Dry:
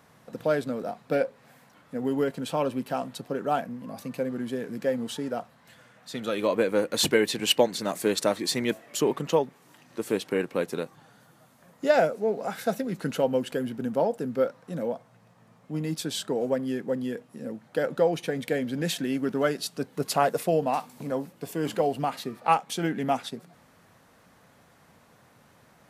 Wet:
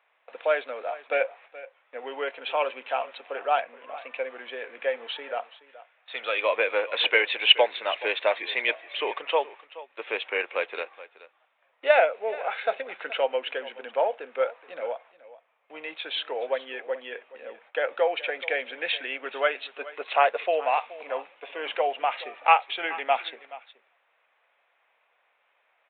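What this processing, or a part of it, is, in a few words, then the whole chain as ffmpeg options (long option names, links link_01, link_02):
musical greeting card: -filter_complex "[0:a]agate=range=-13dB:threshold=-50dB:ratio=16:detection=peak,asettb=1/sr,asplit=3[link_01][link_02][link_03];[link_01]atrim=end=7.994[link_04];[link_02]atrim=start=7.99:end=9.22,asetpts=PTS-STARTPTS,afade=type=in:duration=0.004:curve=qsin,afade=type=out:start_time=1.226:duration=0.004:curve=qsin,bandreject=frequency=1300:width=12[link_05];[link_03]atrim=start=9.216[link_06];[link_04][link_05]acrossfade=duration=0.004:curve1=hsin:curve2=qsin[link_07];[link_07][link_06]acrossfade=duration=0.004:curve1=qsin:curve2=hsin,aecho=1:1:425:0.133,aresample=8000,aresample=44100,highpass=frequency=550:width=0.5412,highpass=frequency=550:width=1.3066,equalizer=frequency=2400:width_type=o:width=0.53:gain=10,volume=3dB"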